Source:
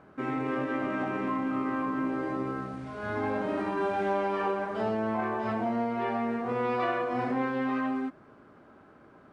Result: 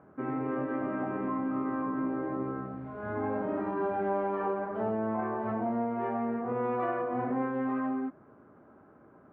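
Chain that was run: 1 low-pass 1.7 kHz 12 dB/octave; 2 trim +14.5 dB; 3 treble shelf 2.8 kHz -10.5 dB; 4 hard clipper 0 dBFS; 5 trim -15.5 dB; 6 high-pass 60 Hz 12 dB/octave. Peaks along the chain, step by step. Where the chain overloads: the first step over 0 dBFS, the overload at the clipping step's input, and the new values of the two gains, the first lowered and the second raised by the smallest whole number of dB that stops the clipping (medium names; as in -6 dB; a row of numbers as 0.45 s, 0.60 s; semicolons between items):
-18.5 dBFS, -4.0 dBFS, -4.5 dBFS, -4.5 dBFS, -20.0 dBFS, -19.5 dBFS; nothing clips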